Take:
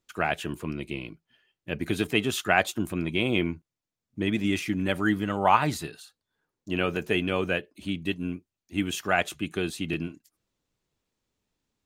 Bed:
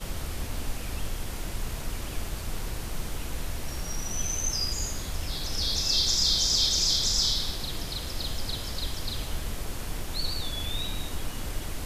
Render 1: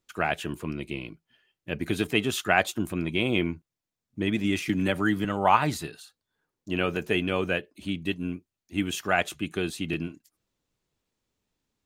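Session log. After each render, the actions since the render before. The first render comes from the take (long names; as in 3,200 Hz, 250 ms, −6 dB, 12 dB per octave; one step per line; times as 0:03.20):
0:04.69–0:05.25: multiband upward and downward compressor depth 70%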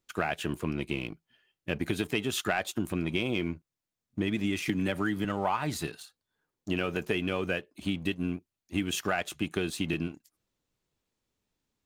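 leveller curve on the samples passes 1
downward compressor 6 to 1, threshold −26 dBFS, peak gain reduction 13 dB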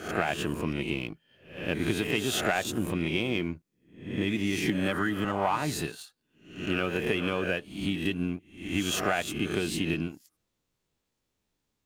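peak hold with a rise ahead of every peak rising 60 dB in 0.50 s
echo ahead of the sound 113 ms −13 dB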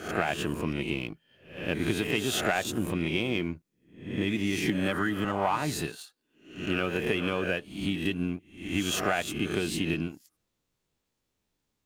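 0:05.96–0:06.55: low shelf with overshoot 220 Hz −6.5 dB, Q 1.5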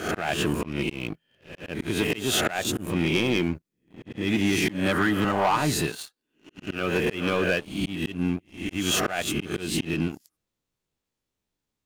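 volume swells 216 ms
leveller curve on the samples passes 2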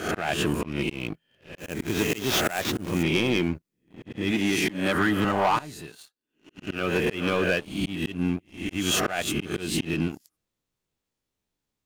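0:01.58–0:03.03: sample-rate reduction 9,400 Hz, jitter 20%
0:04.31–0:04.95: parametric band 65 Hz −11 dB 1.7 octaves
0:05.59–0:06.64: fade in quadratic, from −16.5 dB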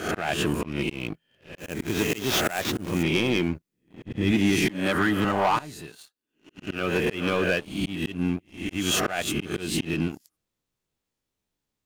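0:04.05–0:04.68: low-shelf EQ 170 Hz +11 dB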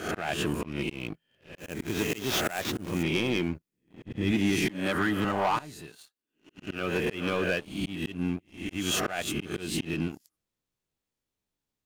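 level −4 dB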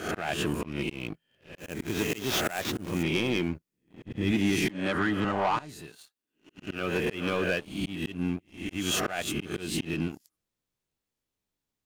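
0:04.71–0:05.69: high-frequency loss of the air 56 metres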